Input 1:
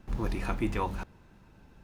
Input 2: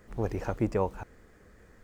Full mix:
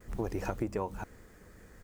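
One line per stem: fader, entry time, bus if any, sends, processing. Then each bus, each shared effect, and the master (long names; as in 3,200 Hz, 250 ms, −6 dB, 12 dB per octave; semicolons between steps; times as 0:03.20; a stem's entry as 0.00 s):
−4.0 dB, 0.00 s, no send, gate on every frequency bin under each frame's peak −15 dB strong
+0.5 dB, 6.2 ms, polarity flipped, no send, high-shelf EQ 6,500 Hz +9.5 dB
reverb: not used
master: downward compressor 10 to 1, threshold −29 dBFS, peak gain reduction 10 dB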